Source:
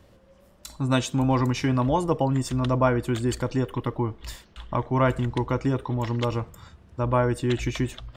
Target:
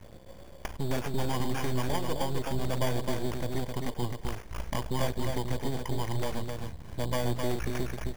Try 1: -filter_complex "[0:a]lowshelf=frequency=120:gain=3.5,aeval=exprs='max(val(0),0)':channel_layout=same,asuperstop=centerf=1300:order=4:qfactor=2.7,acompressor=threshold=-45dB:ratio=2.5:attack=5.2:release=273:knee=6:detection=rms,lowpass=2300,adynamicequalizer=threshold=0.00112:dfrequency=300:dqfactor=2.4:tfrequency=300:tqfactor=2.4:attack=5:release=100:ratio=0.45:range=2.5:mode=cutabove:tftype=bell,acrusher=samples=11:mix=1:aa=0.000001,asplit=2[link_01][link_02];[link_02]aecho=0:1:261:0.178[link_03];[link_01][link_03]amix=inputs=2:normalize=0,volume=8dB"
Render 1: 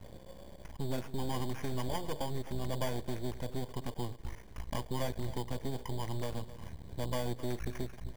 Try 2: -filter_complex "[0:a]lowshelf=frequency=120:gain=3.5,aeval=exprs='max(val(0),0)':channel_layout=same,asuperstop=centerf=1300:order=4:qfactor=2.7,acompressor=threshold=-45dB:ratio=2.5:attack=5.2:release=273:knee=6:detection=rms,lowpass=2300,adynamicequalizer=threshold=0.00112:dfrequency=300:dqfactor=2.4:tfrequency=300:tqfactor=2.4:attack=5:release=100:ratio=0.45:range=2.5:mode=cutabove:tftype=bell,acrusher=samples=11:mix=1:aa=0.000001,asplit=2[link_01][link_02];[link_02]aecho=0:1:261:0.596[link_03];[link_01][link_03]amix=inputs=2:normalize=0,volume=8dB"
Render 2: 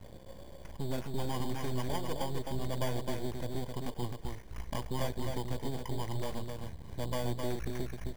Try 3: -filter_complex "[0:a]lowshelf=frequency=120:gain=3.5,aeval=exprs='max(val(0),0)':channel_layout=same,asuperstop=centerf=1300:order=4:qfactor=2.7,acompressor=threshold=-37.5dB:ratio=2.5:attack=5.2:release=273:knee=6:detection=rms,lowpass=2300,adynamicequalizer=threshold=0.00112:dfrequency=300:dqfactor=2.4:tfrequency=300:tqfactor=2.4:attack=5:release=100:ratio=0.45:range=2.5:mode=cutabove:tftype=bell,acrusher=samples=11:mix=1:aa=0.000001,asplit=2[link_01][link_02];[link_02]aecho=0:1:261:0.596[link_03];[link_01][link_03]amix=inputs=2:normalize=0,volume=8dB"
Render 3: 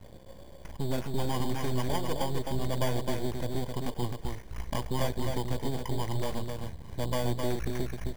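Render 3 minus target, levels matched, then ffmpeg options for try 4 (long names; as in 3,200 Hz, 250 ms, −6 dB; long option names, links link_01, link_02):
2,000 Hz band −2.5 dB
-filter_complex "[0:a]lowshelf=frequency=120:gain=3.5,aeval=exprs='max(val(0),0)':channel_layout=same,asuperstop=centerf=1300:order=4:qfactor=2.7,acompressor=threshold=-37.5dB:ratio=2.5:attack=5.2:release=273:knee=6:detection=rms,adynamicequalizer=threshold=0.00112:dfrequency=300:dqfactor=2.4:tfrequency=300:tqfactor=2.4:attack=5:release=100:ratio=0.45:range=2.5:mode=cutabove:tftype=bell,acrusher=samples=11:mix=1:aa=0.000001,asplit=2[link_01][link_02];[link_02]aecho=0:1:261:0.596[link_03];[link_01][link_03]amix=inputs=2:normalize=0,volume=8dB"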